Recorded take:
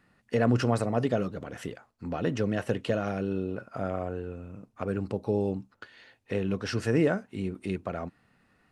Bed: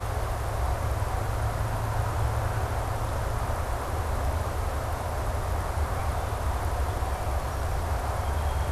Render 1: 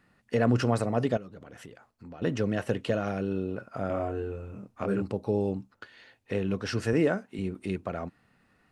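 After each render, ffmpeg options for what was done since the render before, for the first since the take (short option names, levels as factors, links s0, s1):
-filter_complex "[0:a]asettb=1/sr,asplit=3[s0][s1][s2];[s0]atrim=end=1.174[s3];[s1]atrim=start=1.17:end=2.22,asetpts=PTS-STARTPTS,afade=t=in:d=0.004:c=qsin,afade=t=out:st=1.046:d=0.004:c=qsin,acompressor=threshold=0.00447:ratio=2.5:attack=3.2:release=140:knee=1:detection=peak[s4];[s2]atrim=start=2.216[s5];[s3][s4]acrossfade=d=0.004:c1=hsin:c2=qsin[s6];[s6][s5]acrossfade=d=0.004:c1=qsin:c2=hsin,asettb=1/sr,asplit=3[s7][s8][s9];[s7]atrim=end=3.874[s10];[s8]atrim=start=3.87:end=5.02,asetpts=PTS-STARTPTS,afade=t=in:d=0.004:c=qsin,afade=t=out:st=1.146:d=0.004:c=qsin,asplit=2[s11][s12];[s12]adelay=25,volume=0.794[s13];[s11][s13]amix=inputs=2:normalize=0,atrim=end_sample=50715[s14];[s9]atrim=start=5.016[s15];[s10][s14]acrossfade=d=0.004:c1=hsin:c2=qsin[s16];[s16][s15]acrossfade=d=0.004:c1=qsin:c2=hsin,asettb=1/sr,asplit=3[s17][s18][s19];[s17]atrim=end=6.934[s20];[s18]atrim=start=6.93:end=7.39,asetpts=PTS-STARTPTS,afade=t=in:d=0.004:c=qsin,afade=t=out:st=0.456:d=0.004:c=qsin,highpass=150[s21];[s19]atrim=start=7.386[s22];[s20][s21]acrossfade=d=0.004:c1=hsin:c2=qsin[s23];[s23][s22]acrossfade=d=0.004:c1=qsin:c2=hsin"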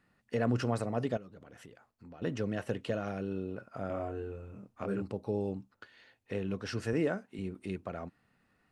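-af "volume=0.501"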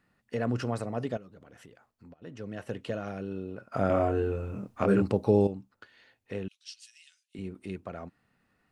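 -filter_complex "[0:a]asettb=1/sr,asplit=3[s0][s1][s2];[s0]atrim=end=6.484[s3];[s1]atrim=start=6.48:end=7.35,asetpts=PTS-STARTPTS,afade=t=in:d=0.004:c=qsin,afade=t=out:st=0.866:d=0.004:c=qsin,asuperpass=centerf=6000:order=8:qfactor=0.79[s4];[s2]atrim=start=7.346[s5];[s3][s4]acrossfade=d=0.004:c1=hsin:c2=qsin[s6];[s6][s5]acrossfade=d=0.004:c1=qsin:c2=hsin,asplit=4[s7][s8][s9][s10];[s7]atrim=end=2.14,asetpts=PTS-STARTPTS,afade=t=out:st=2.136:d=0.004:c=hsin:silence=0.133352[s11];[s8]atrim=start=2.14:end=3.722,asetpts=PTS-STARTPTS,afade=t=in:d=0.7:silence=0.133352[s12];[s9]atrim=start=3.718:end=5.472,asetpts=PTS-STARTPTS,volume=3.55[s13];[s10]atrim=start=5.468[s14];[s11][s12]concat=n=2:v=0:a=1[s15];[s15][s13]acrossfade=d=0.004:c1=hsin:c2=hsin[s16];[s16][s14]acrossfade=d=0.004:c1=hsin:c2=hsin"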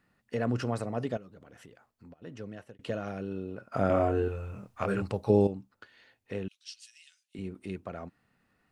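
-filter_complex "[0:a]asettb=1/sr,asplit=3[s0][s1][s2];[s0]atrim=end=4.284[s3];[s1]atrim=start=4.28:end=5.3,asetpts=PTS-STARTPTS,afade=t=in:d=0.004:c=qsin,afade=t=out:st=1.016:d=0.004:c=qsin,equalizer=f=280:w=0.76:g=-10.5[s4];[s2]atrim=start=5.296[s5];[s3][s4]acrossfade=d=0.004:c1=hsin:c2=qsin[s6];[s6][s5]acrossfade=d=0.004:c1=qsin:c2=hsin,asplit=2[s7][s8];[s7]atrim=end=2.79,asetpts=PTS-STARTPTS,afade=t=out:st=2.37:d=0.42[s9];[s8]atrim=start=2.79,asetpts=PTS-STARTPTS,afade=t=in:d=0.004:c=hsin[s10];[s9][s10]concat=n=2:v=0:a=1"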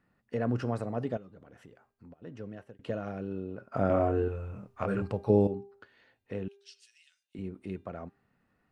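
-af "highshelf=f=2500:g=-10,bandreject=f=398.9:t=h:w=4,bandreject=f=797.8:t=h:w=4,bandreject=f=1196.7:t=h:w=4,bandreject=f=1595.6:t=h:w=4,bandreject=f=1994.5:t=h:w=4,bandreject=f=2393.4:t=h:w=4,bandreject=f=2792.3:t=h:w=4,bandreject=f=3191.2:t=h:w=4,bandreject=f=3590.1:t=h:w=4,bandreject=f=3989:t=h:w=4,bandreject=f=4387.9:t=h:w=4,bandreject=f=4786.8:t=h:w=4,bandreject=f=5185.7:t=h:w=4,bandreject=f=5584.6:t=h:w=4,bandreject=f=5983.5:t=h:w=4,bandreject=f=6382.4:t=h:w=4,bandreject=f=6781.3:t=h:w=4,bandreject=f=7180.2:t=h:w=4,bandreject=f=7579.1:t=h:w=4,bandreject=f=7978:t=h:w=4,bandreject=f=8376.9:t=h:w=4,bandreject=f=8775.8:t=h:w=4,bandreject=f=9174.7:t=h:w=4,bandreject=f=9573.6:t=h:w=4,bandreject=f=9972.5:t=h:w=4,bandreject=f=10371.4:t=h:w=4,bandreject=f=10770.3:t=h:w=4,bandreject=f=11169.2:t=h:w=4,bandreject=f=11568.1:t=h:w=4,bandreject=f=11967:t=h:w=4"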